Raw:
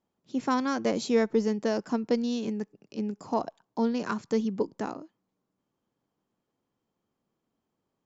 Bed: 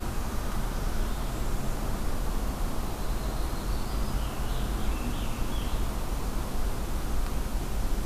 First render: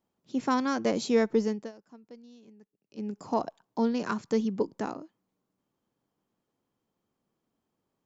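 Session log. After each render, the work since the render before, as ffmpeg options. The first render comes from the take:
-filter_complex "[0:a]asplit=3[a][b][c];[a]atrim=end=1.72,asetpts=PTS-STARTPTS,afade=t=out:st=1.32:d=0.4:c=qsin:silence=0.0707946[d];[b]atrim=start=1.72:end=2.87,asetpts=PTS-STARTPTS,volume=-23dB[e];[c]atrim=start=2.87,asetpts=PTS-STARTPTS,afade=t=in:d=0.4:c=qsin:silence=0.0707946[f];[d][e][f]concat=n=3:v=0:a=1"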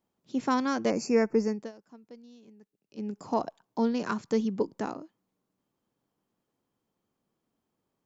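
-filter_complex "[0:a]asettb=1/sr,asplit=3[a][b][c];[a]atrim=end=0.904[d];[b]atrim=start=0.9:end=1.6,asetpts=PTS-STARTPTS,afade=t=in:d=0.004:c=qsin,afade=t=out:st=0.696:d=0.004:c=qsin,asuperstop=centerf=3500:order=20:qfactor=2.1[e];[c]atrim=start=1.596[f];[d][e]acrossfade=d=0.004:c1=hsin:c2=qsin[g];[g][f]acrossfade=d=0.004:c1=qsin:c2=hsin"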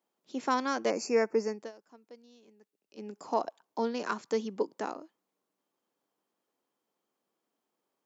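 -af "highpass=360"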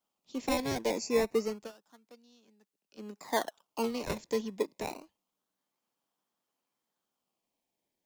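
-filter_complex "[0:a]acrossover=split=280|540|1900[a][b][c][d];[b]aeval=exprs='sgn(val(0))*max(abs(val(0))-0.00224,0)':c=same[e];[c]acrusher=samples=20:mix=1:aa=0.000001:lfo=1:lforange=20:lforate=0.28[f];[a][e][f][d]amix=inputs=4:normalize=0"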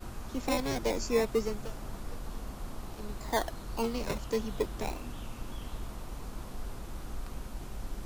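-filter_complex "[1:a]volume=-10dB[a];[0:a][a]amix=inputs=2:normalize=0"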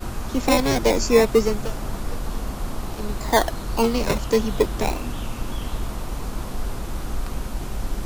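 -af "volume=12dB"

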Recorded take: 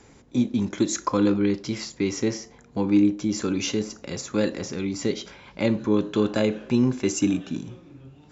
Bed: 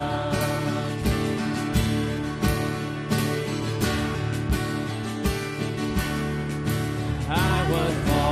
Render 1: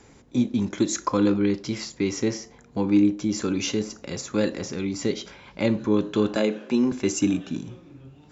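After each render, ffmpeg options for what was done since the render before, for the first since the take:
-filter_complex "[0:a]asettb=1/sr,asplit=3[a][b][c];[a]atrim=end=6.364[d];[b]atrim=start=6.36:end=6.92,asetpts=PTS-STARTPTS,afade=t=in:d=0.004:c=qsin,afade=t=out:st=0.556:d=0.004:c=qsin,highpass=f=190:w=0.5412,highpass=f=190:w=1.3066[e];[c]atrim=start=6.916[f];[d][e]acrossfade=d=0.004:c1=hsin:c2=qsin[g];[g][f]acrossfade=d=0.004:c1=qsin:c2=hsin"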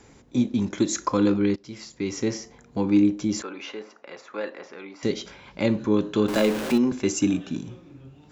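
-filter_complex "[0:a]asettb=1/sr,asplit=3[a][b][c];[a]atrim=end=3.424[d];[b]atrim=start=3.42:end=5.03,asetpts=PTS-STARTPTS,afade=t=in:d=0.004:c=qsin,afade=t=out:st=1.606:d=0.004:c=qsin,highpass=640,lowpass=2.1k[e];[c]atrim=start=5.026[f];[d][e]acrossfade=d=0.004:c1=hsin:c2=qsin[g];[g][f]acrossfade=d=0.004:c1=qsin:c2=hsin,asettb=1/sr,asplit=3[h][i][j];[h]atrim=end=6.284[k];[i]atrim=start=6.28:end=6.78,asetpts=PTS-STARTPTS,afade=t=in:d=0.004:c=qsin,afade=t=out:st=0.496:d=0.004:c=qsin,aeval=exprs='val(0)+0.5*0.0531*sgn(val(0))':c=same[l];[j]atrim=start=6.776[m];[k][l]acrossfade=d=0.004:c1=hsin:c2=qsin[n];[n][m]acrossfade=d=0.004:c1=qsin:c2=hsin,asplit=2[o][p];[o]atrim=end=1.56,asetpts=PTS-STARTPTS,afade=t=out:st=1.556:d=0.004:c=hsin:silence=0.149624[q];[p]atrim=start=1.56,asetpts=PTS-STARTPTS,afade=t=in:d=0.81:silence=0.149624[r];[q][r]concat=n=2:v=0:a=1"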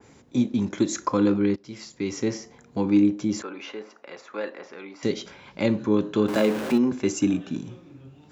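-af "highpass=77,adynamicequalizer=threshold=0.00631:dfrequency=2500:dqfactor=0.7:tfrequency=2500:tqfactor=0.7:attack=5:release=100:ratio=0.375:range=2.5:mode=cutabove:tftype=highshelf"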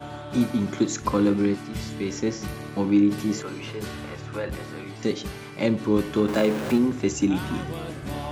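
-filter_complex "[1:a]volume=-10.5dB[a];[0:a][a]amix=inputs=2:normalize=0"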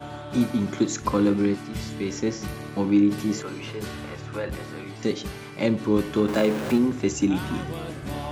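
-af anull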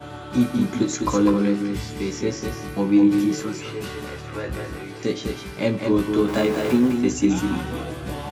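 -filter_complex "[0:a]asplit=2[a][b];[b]adelay=16,volume=-5dB[c];[a][c]amix=inputs=2:normalize=0,asplit=2[d][e];[e]aecho=0:1:203:0.531[f];[d][f]amix=inputs=2:normalize=0"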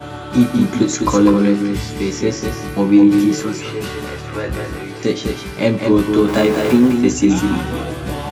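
-af "volume=6.5dB,alimiter=limit=-2dB:level=0:latency=1"

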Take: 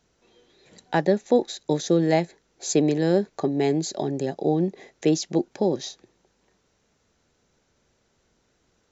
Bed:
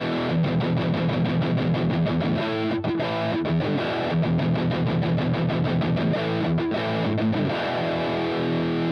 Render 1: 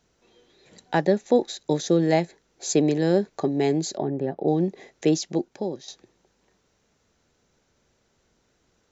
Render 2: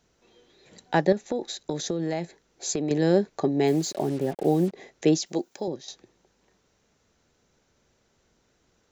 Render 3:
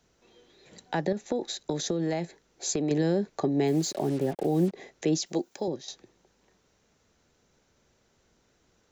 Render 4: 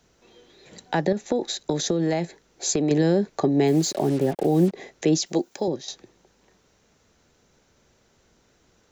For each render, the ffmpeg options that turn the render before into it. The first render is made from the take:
-filter_complex "[0:a]asettb=1/sr,asplit=3[a][b][c];[a]atrim=end=3.974[d];[b]atrim=start=3.97:end=4.48,asetpts=PTS-STARTPTS,afade=t=in:d=0.004:c=qsin,afade=t=out:st=0.506:d=0.004:c=qsin,lowpass=1.7k[e];[c]atrim=start=4.476[f];[d][e]acrossfade=d=0.004:c1=hsin:c2=qsin[g];[g][f]acrossfade=d=0.004:c1=qsin:c2=hsin,asplit=2[h][i];[h]atrim=end=5.88,asetpts=PTS-STARTPTS,afade=t=out:st=5.14:d=0.74:silence=0.251189[j];[i]atrim=start=5.88,asetpts=PTS-STARTPTS,afade=t=in:d=0.004:c=hsin:silence=0.251189[k];[j][k]concat=n=2:v=0:a=1"
-filter_complex "[0:a]asettb=1/sr,asplit=3[a][b][c];[a]atrim=end=1.124[d];[b]atrim=start=1.12:end=2.91,asetpts=PTS-STARTPTS,afade=t=in:d=0.004:c=qsin,afade=t=out:st=1.786:d=0.004:c=qsin,acompressor=threshold=-23dB:ratio=10:attack=3.2:release=140:knee=1:detection=peak[e];[c]atrim=start=2.906[f];[d][e]acrossfade=d=0.004:c1=hsin:c2=qsin[g];[g][f]acrossfade=d=0.004:c1=qsin:c2=hsin,asplit=3[h][i][j];[h]afade=t=out:st=3.66:d=0.02[k];[i]acrusher=bits=6:mix=0:aa=0.5,afade=t=in:st=3.66:d=0.02,afade=t=out:st=4.72:d=0.02[l];[j]afade=t=in:st=4.72:d=0.02[m];[k][l][m]amix=inputs=3:normalize=0,asettb=1/sr,asplit=3[n][o][p];[n]atrim=end=5.264[q];[o]atrim=start=5.26:end=5.68,asetpts=PTS-STARTPTS,afade=t=in:d=0.004:c=qsin,afade=t=out:st=0.416:d=0.004:c=qsin,aemphasis=mode=production:type=bsi[r];[p]atrim=start=5.676[s];[q][r]acrossfade=d=0.004:c1=hsin:c2=qsin[t];[t][s]acrossfade=d=0.004:c1=qsin:c2=hsin"
-filter_complex "[0:a]alimiter=limit=-14.5dB:level=0:latency=1:release=63,acrossover=split=280[a][b];[b]acompressor=threshold=-25dB:ratio=6[c];[a][c]amix=inputs=2:normalize=0"
-af "volume=5.5dB"

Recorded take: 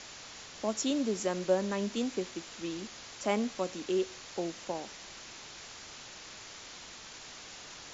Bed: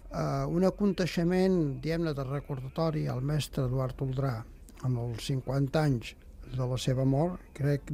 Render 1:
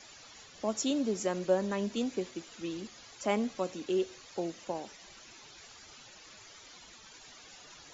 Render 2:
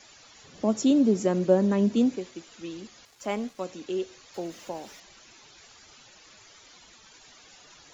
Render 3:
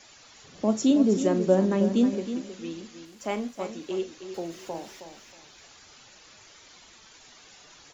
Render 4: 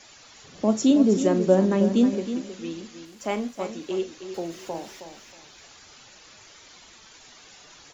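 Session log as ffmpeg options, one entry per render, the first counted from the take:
-af "afftdn=nr=12:nf=-48"
-filter_complex "[0:a]asettb=1/sr,asplit=3[a][b][c];[a]atrim=end=0.444[d];[b]atrim=start=0.44:end=2.16,asetpts=PTS-STARTPTS,afade=t=in:d=0.004:c=qsin,afade=t=out:st=1.716:d=0.004:c=qsin,equalizer=f=190:w=0.39:g=12[e];[c]atrim=start=2.156[f];[d][e]acrossfade=d=0.004:c1=hsin:c2=qsin[g];[g][f]acrossfade=d=0.004:c1=qsin:c2=hsin,asettb=1/sr,asplit=3[h][i][j];[h]atrim=end=3.054[k];[i]atrim=start=3.05:end=3.65,asetpts=PTS-STARTPTS,afade=t=in:d=0.004:c=qsin,afade=t=out:st=0.596:d=0.004:c=qsin,aeval=exprs='sgn(val(0))*max(abs(val(0))-0.00178,0)':c=same[l];[j]atrim=start=3.646[m];[k][l]acrossfade=d=0.004:c1=hsin:c2=qsin[n];[n][m]acrossfade=d=0.004:c1=qsin:c2=hsin,asettb=1/sr,asplit=3[o][p][q];[o]atrim=end=4.344[r];[p]atrim=start=4.34:end=5,asetpts=PTS-STARTPTS,afade=t=in:d=0.004:c=qsin,afade=t=out:st=0.656:d=0.004:c=qsin,aeval=exprs='val(0)+0.5*0.00335*sgn(val(0))':c=same[s];[q]atrim=start=4.996[t];[r][s]acrossfade=d=0.004:c1=hsin:c2=qsin[u];[u][t]acrossfade=d=0.004:c1=qsin:c2=hsin"
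-filter_complex "[0:a]asplit=2[a][b];[b]adelay=42,volume=-12dB[c];[a][c]amix=inputs=2:normalize=0,asplit=2[d][e];[e]aecho=0:1:317|634|951:0.316|0.0822|0.0214[f];[d][f]amix=inputs=2:normalize=0"
-af "volume=2.5dB"

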